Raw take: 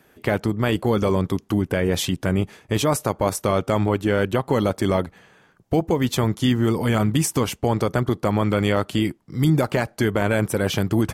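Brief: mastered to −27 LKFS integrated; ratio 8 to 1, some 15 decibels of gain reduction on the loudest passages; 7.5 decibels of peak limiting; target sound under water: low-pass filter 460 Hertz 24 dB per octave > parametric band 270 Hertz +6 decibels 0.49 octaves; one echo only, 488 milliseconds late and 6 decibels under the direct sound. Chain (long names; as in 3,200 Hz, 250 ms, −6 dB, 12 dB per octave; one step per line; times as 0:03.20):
downward compressor 8 to 1, threshold −31 dBFS
brickwall limiter −25 dBFS
low-pass filter 460 Hz 24 dB per octave
parametric band 270 Hz +6 dB 0.49 octaves
single-tap delay 488 ms −6 dB
level +9 dB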